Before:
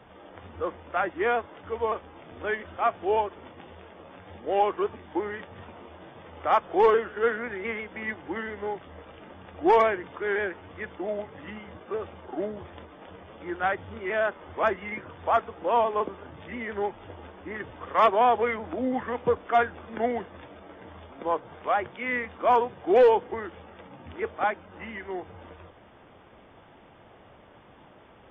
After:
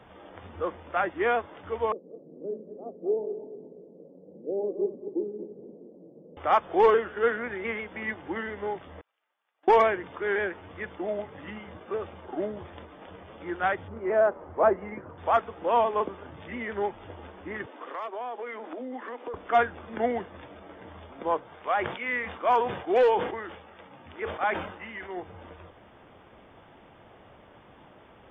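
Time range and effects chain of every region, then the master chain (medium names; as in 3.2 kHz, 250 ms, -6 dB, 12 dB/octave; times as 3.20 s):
1.92–6.37 s: backward echo that repeats 117 ms, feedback 58%, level -8 dB + elliptic band-pass 160–510 Hz, stop band 60 dB
9.01–9.68 s: gate -36 dBFS, range -27 dB + high-pass 1.1 kHz + compression 5:1, threshold -57 dBFS
13.88–15.18 s: low-pass 1.2 kHz + dynamic bell 540 Hz, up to +6 dB, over -39 dBFS, Q 0.84
17.66–19.34 s: steep high-pass 240 Hz 48 dB/octave + compression 5:1, threshold -34 dBFS + tape noise reduction on one side only decoder only
21.43–25.17 s: bass shelf 490 Hz -7 dB + decay stretcher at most 76 dB/s
whole clip: none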